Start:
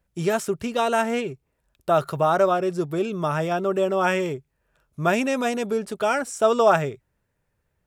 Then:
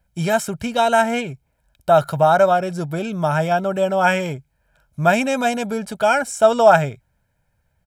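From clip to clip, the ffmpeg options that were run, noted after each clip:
-af "aecho=1:1:1.3:0.65,volume=3.5dB"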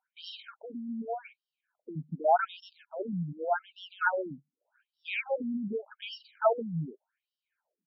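-af "afftfilt=real='re*between(b*sr/1024,200*pow(4000/200,0.5+0.5*sin(2*PI*0.85*pts/sr))/1.41,200*pow(4000/200,0.5+0.5*sin(2*PI*0.85*pts/sr))*1.41)':imag='im*between(b*sr/1024,200*pow(4000/200,0.5+0.5*sin(2*PI*0.85*pts/sr))/1.41,200*pow(4000/200,0.5+0.5*sin(2*PI*0.85*pts/sr))*1.41)':win_size=1024:overlap=0.75,volume=-6dB"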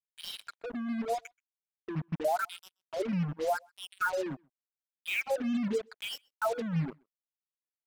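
-filter_complex "[0:a]alimiter=level_in=0.5dB:limit=-24dB:level=0:latency=1:release=186,volume=-0.5dB,acrusher=bits=6:mix=0:aa=0.5,asplit=2[a][b];[b]adelay=128.3,volume=-30dB,highshelf=f=4k:g=-2.89[c];[a][c]amix=inputs=2:normalize=0,volume=3dB"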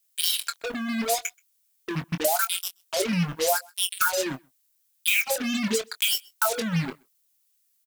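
-filter_complex "[0:a]crystalizer=i=9:c=0,acompressor=threshold=-24dB:ratio=6,asplit=2[a][b];[b]adelay=23,volume=-10dB[c];[a][c]amix=inputs=2:normalize=0,volume=4.5dB"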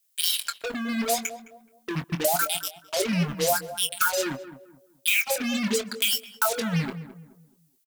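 -filter_complex "[0:a]asplit=2[a][b];[b]adelay=213,lowpass=f=1.1k:p=1,volume=-12dB,asplit=2[c][d];[d]adelay=213,lowpass=f=1.1k:p=1,volume=0.35,asplit=2[e][f];[f]adelay=213,lowpass=f=1.1k:p=1,volume=0.35,asplit=2[g][h];[h]adelay=213,lowpass=f=1.1k:p=1,volume=0.35[i];[a][c][e][g][i]amix=inputs=5:normalize=0"

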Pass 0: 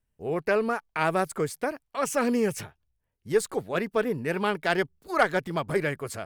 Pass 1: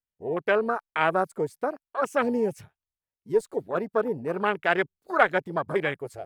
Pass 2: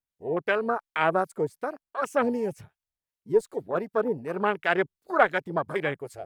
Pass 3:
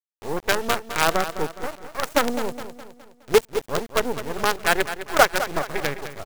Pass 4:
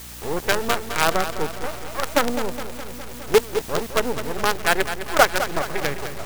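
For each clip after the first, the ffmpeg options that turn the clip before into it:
-af "afwtdn=0.0316,lowshelf=f=270:g=-10,volume=3.5dB"
-filter_complex "[0:a]acrossover=split=1300[a][b];[a]aeval=exprs='val(0)*(1-0.5/2+0.5/2*cos(2*PI*2.7*n/s))':c=same[c];[b]aeval=exprs='val(0)*(1-0.5/2-0.5/2*cos(2*PI*2.7*n/s))':c=same[d];[c][d]amix=inputs=2:normalize=0,volume=1.5dB"
-filter_complex "[0:a]acrusher=bits=4:dc=4:mix=0:aa=0.000001,asplit=2[a][b];[b]aecho=0:1:208|416|624|832|1040:0.266|0.125|0.0588|0.0276|0.013[c];[a][c]amix=inputs=2:normalize=0,volume=4dB"
-af "aeval=exprs='val(0)+0.5*0.0422*sgn(val(0))':c=same,aeval=exprs='val(0)+0.00794*(sin(2*PI*60*n/s)+sin(2*PI*2*60*n/s)/2+sin(2*PI*3*60*n/s)/3+sin(2*PI*4*60*n/s)/4+sin(2*PI*5*60*n/s)/5)':c=same"

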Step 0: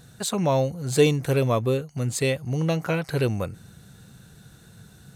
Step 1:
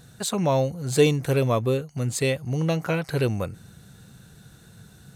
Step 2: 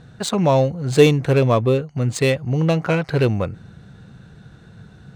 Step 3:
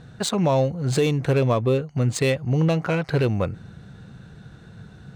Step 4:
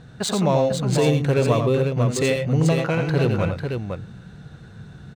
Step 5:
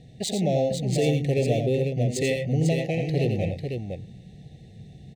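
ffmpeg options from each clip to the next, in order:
-af anull
-af "adynamicsmooth=sensitivity=3.5:basefreq=3.2k,volume=6dB"
-af "alimiter=limit=-12dB:level=0:latency=1:release=274"
-af "aecho=1:1:87|108|497:0.473|0.211|0.501"
-af "asuperstop=centerf=1200:order=20:qfactor=1.2,volume=-4dB"

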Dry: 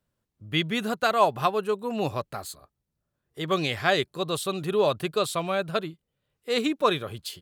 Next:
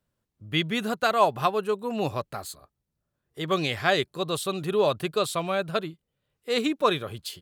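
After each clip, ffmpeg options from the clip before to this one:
-af anull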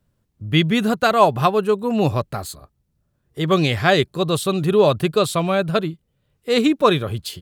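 -af "lowshelf=f=270:g=9.5,volume=5.5dB"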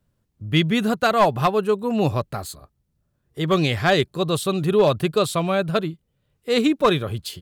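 -af "aeval=exprs='clip(val(0),-1,0.355)':c=same,volume=-2dB"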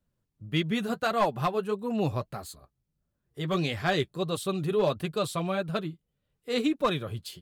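-af "flanger=delay=3.3:depth=4.6:regen=-42:speed=1.6:shape=triangular,volume=-4.5dB"

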